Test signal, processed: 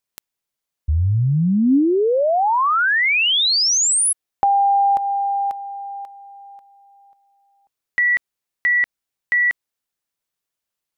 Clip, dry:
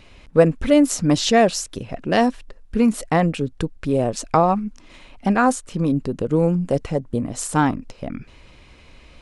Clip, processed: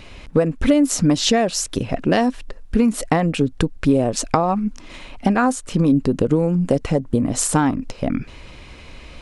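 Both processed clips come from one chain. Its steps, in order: compression 12:1, threshold -21 dBFS; dynamic bell 270 Hz, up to +4 dB, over -40 dBFS, Q 5; trim +7.5 dB

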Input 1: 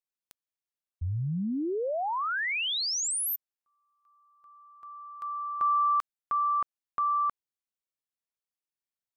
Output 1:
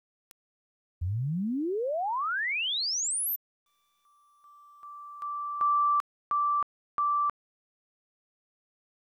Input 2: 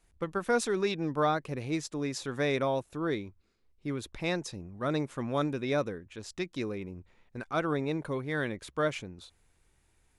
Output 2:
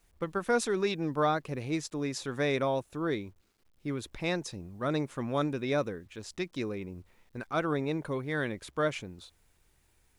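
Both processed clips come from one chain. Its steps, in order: word length cut 12-bit, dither none

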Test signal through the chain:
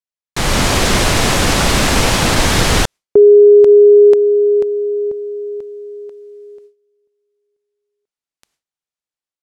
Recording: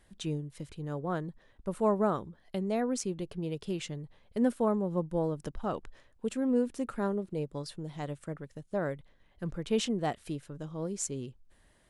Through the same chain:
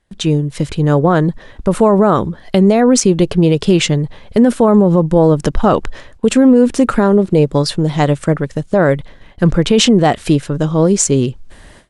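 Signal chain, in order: low-pass 8.7 kHz 12 dB/octave; gate with hold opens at -54 dBFS; level rider gain up to 6 dB; loudness maximiser +20 dB; trim -1 dB

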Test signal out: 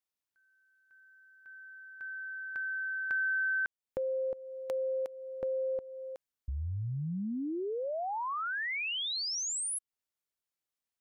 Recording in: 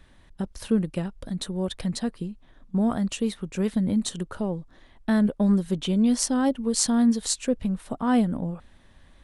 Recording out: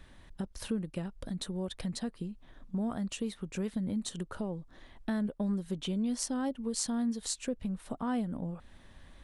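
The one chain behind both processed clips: compression 2:1, threshold -39 dBFS

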